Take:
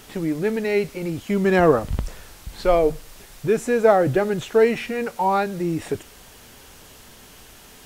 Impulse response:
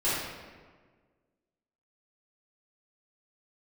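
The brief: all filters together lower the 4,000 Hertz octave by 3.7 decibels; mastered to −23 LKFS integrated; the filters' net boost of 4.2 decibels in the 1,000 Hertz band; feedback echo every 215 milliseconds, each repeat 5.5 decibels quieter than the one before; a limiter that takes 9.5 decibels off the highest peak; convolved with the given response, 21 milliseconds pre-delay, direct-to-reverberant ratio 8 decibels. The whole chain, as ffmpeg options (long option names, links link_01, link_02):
-filter_complex "[0:a]equalizer=frequency=1000:width_type=o:gain=6,equalizer=frequency=4000:width_type=o:gain=-5.5,alimiter=limit=-11dB:level=0:latency=1,aecho=1:1:215|430|645|860|1075|1290|1505:0.531|0.281|0.149|0.079|0.0419|0.0222|0.0118,asplit=2[link_01][link_02];[1:a]atrim=start_sample=2205,adelay=21[link_03];[link_02][link_03]afir=irnorm=-1:irlink=0,volume=-19.5dB[link_04];[link_01][link_04]amix=inputs=2:normalize=0,volume=-2dB"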